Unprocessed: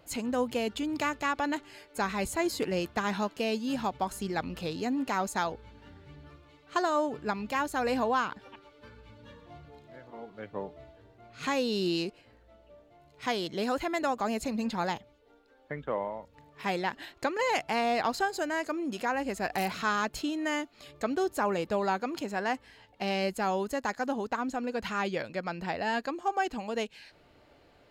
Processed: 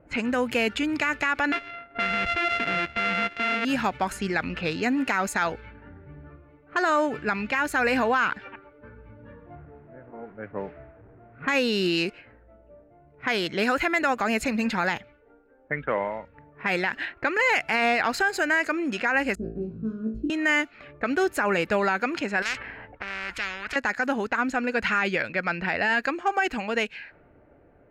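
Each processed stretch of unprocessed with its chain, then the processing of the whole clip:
1.52–3.65 sample sorter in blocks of 64 samples + synth low-pass 3300 Hz, resonance Q 1.8
9.55–11.48 delta modulation 64 kbps, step -48.5 dBFS + tape spacing loss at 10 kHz 31 dB
19.35–20.3 inverse Chebyshev low-pass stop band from 770 Hz + flutter echo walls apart 3.1 m, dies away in 0.39 s
22.42–23.76 bell 7900 Hz -6 dB 1.8 oct + gate -54 dBFS, range -9 dB + spectral compressor 10:1
whole clip: low-pass opened by the level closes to 570 Hz, open at -28.5 dBFS; band shelf 1900 Hz +10 dB 1.2 oct; limiter -19.5 dBFS; gain +5.5 dB

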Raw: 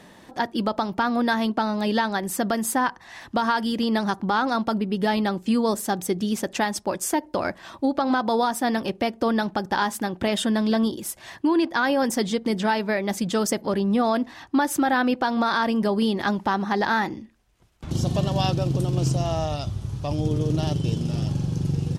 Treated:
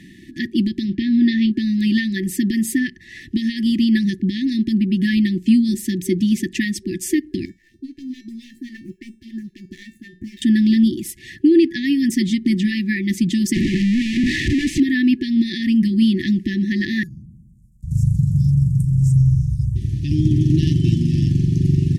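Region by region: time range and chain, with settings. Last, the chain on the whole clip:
0.85–1.51 LPF 5100 Hz 24 dB/oct + doubler 30 ms -12 dB
7.45–10.42 median filter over 15 samples + phaser stages 2, 3.7 Hz, lowest notch 110–3600 Hz + resonator 450 Hz, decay 0.32 s, mix 80%
13.54–14.8 infinite clipping + air absorption 89 m
17.03–19.76 elliptic band-stop 140–7700 Hz, stop band 50 dB + dark delay 0.114 s, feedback 59%, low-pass 470 Hz, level -5 dB
whole clip: FFT band-reject 380–1700 Hz; high shelf 2400 Hz -9 dB; gain +8.5 dB

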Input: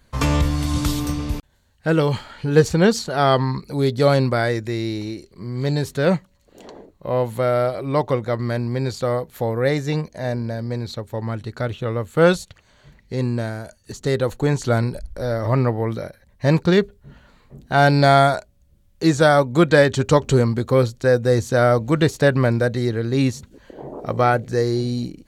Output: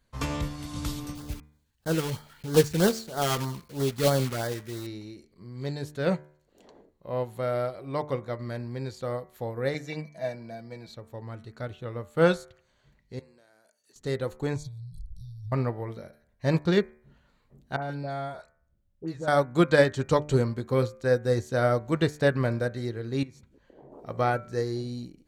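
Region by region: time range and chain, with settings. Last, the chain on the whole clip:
1.15–4.87 block floating point 3-bit + LFO notch sine 3.1 Hz 540–2600 Hz
9.74–10.89 low shelf 440 Hz -9 dB + comb 6.1 ms, depth 57% + small resonant body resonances 220/660/2300 Hz, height 11 dB, ringing for 40 ms
13.19–13.96 HPF 310 Hz + tilt +1.5 dB/oct + compressor 2.5:1, threshold -51 dBFS
14.56–15.52 low shelf 380 Hz +11.5 dB + compressor 20:1, threshold -21 dBFS + brick-wall FIR band-stop 170–3200 Hz
17.76–19.28 high shelf 2000 Hz -9 dB + compressor 2:1, threshold -24 dBFS + dispersion highs, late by 66 ms, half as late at 1200 Hz
23.23–23.92 high shelf 4100 Hz -7.5 dB + compressor 4:1, threshold -32 dBFS
whole clip: de-hum 74.49 Hz, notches 33; upward expander 1.5:1, over -27 dBFS; gain -4.5 dB

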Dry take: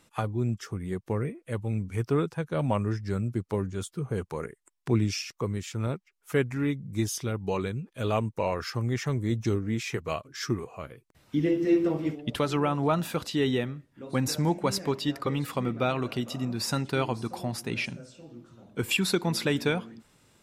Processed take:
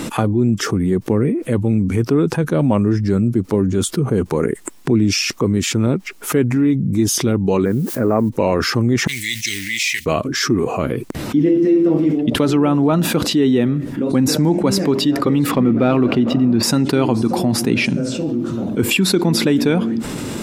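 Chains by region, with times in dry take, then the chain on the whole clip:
7.64–8.28 steep low-pass 2100 Hz 72 dB/oct + low shelf 94 Hz -11 dB + added noise blue -60 dBFS
9.07–10.06 G.711 law mismatch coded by mu + elliptic high-pass 2000 Hz
15.51–16.63 LPF 2900 Hz + sample leveller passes 1
whole clip: bell 270 Hz +12 dB 1.6 oct; fast leveller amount 70%; gain -3 dB

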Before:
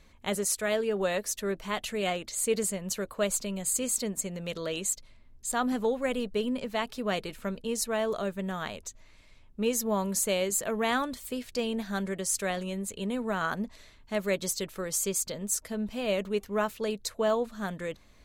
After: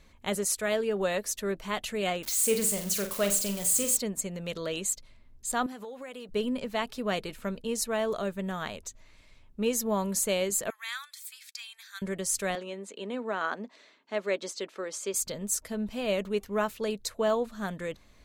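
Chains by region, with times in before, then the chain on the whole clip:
2.23–3.97 switching spikes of -26.5 dBFS + flutter echo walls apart 7.7 m, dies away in 0.35 s
5.66–6.29 HPF 490 Hz 6 dB/oct + compressor 16:1, threshold -37 dBFS + short-mantissa float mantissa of 6-bit
10.7–12.02 Bessel high-pass 2200 Hz, order 6 + notch 2900 Hz, Q 6.8
12.55–15.14 HPF 260 Hz 24 dB/oct + air absorption 94 m
whole clip: dry

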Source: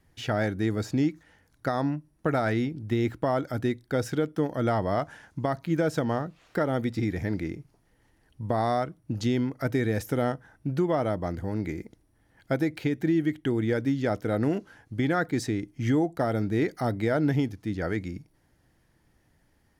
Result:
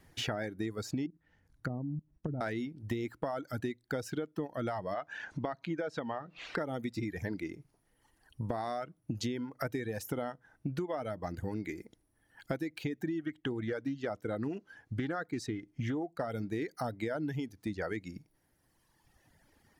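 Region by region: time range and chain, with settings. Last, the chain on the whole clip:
1.06–2.41 treble ducked by the level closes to 410 Hz, closed at -25 dBFS + tone controls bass +11 dB, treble -1 dB + level quantiser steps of 15 dB
4.94–6.58 LPF 4000 Hz + low shelf 160 Hz -10 dB + upward compressor, threshold -32 dBFS
13.19–16.3 high shelf 8200 Hz -8.5 dB + Doppler distortion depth 0.12 ms
whole clip: reverb removal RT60 1.6 s; low shelf 140 Hz -6 dB; compressor 6:1, threshold -39 dBFS; gain +5.5 dB

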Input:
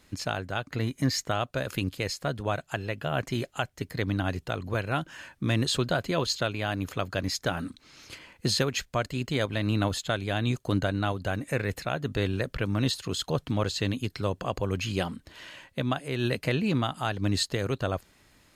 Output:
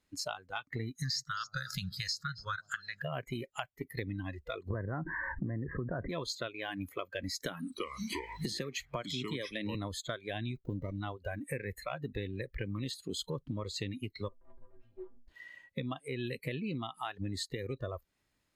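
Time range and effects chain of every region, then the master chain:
0.95–3.02 EQ curve 110 Hz 0 dB, 170 Hz +5 dB, 270 Hz -12 dB, 950 Hz -6 dB, 1400 Hz +12 dB, 2400 Hz -5 dB, 5000 Hz +15 dB, 9400 Hz +1 dB + echo with dull and thin repeats by turns 0.134 s, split 950 Hz, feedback 55%, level -13.5 dB
4.7–6.09 steep low-pass 2000 Hz 72 dB/oct + tilt shelf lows +3.5 dB, about 660 Hz + fast leveller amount 70%
7.4–9.75 HPF 100 Hz 6 dB/oct + echoes that change speed 0.326 s, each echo -4 st, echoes 3, each echo -6 dB + three-band squash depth 70%
10.56–11.01 bell 1300 Hz -10 dB 0.6 oct + running maximum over 17 samples
14.28–15.28 minimum comb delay 3.2 ms + LPF 1100 Hz + metallic resonator 120 Hz, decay 0.25 s, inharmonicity 0.008
whole clip: spectral noise reduction 21 dB; compressor 6:1, threshold -37 dBFS; gain +2 dB

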